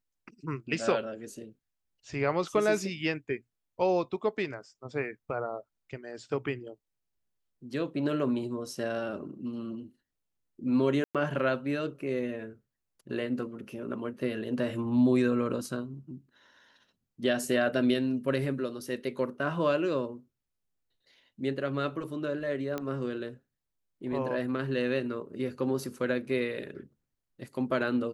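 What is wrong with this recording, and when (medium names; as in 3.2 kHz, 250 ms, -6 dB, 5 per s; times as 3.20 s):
11.04–11.15 s: dropout 107 ms
22.78 s: pop -19 dBFS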